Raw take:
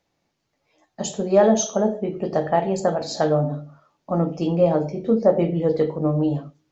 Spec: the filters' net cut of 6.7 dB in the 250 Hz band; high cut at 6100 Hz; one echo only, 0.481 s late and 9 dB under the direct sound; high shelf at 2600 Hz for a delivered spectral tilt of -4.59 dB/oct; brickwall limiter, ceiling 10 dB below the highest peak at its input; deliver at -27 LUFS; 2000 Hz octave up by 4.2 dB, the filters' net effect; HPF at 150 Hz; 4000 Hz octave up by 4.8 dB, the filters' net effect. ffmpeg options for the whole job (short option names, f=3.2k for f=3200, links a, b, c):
-af "highpass=150,lowpass=6.1k,equalizer=f=250:t=o:g=-9,equalizer=f=2k:t=o:g=3.5,highshelf=f=2.6k:g=3,equalizer=f=4k:t=o:g=3.5,alimiter=limit=-15.5dB:level=0:latency=1,aecho=1:1:481:0.355,volume=-0.5dB"